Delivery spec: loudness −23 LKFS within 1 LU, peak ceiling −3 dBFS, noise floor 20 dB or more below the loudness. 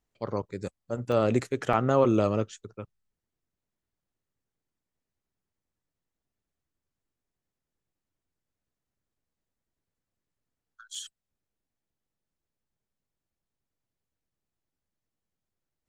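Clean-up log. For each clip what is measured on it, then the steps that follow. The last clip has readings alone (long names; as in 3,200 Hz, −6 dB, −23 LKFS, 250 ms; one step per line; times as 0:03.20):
number of dropouts 3; longest dropout 3.0 ms; integrated loudness −27.0 LKFS; sample peak −9.5 dBFS; target loudness −23.0 LKFS
→ repair the gap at 0:01.12/0:01.73/0:10.95, 3 ms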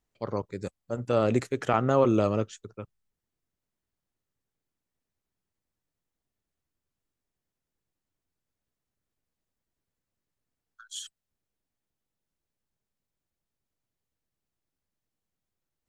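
number of dropouts 0; integrated loudness −27.0 LKFS; sample peak −9.5 dBFS; target loudness −23.0 LKFS
→ level +4 dB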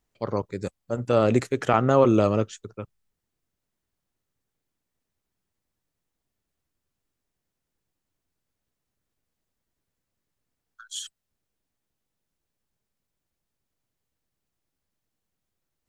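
integrated loudness −23.0 LKFS; sample peak −5.5 dBFS; background noise floor −83 dBFS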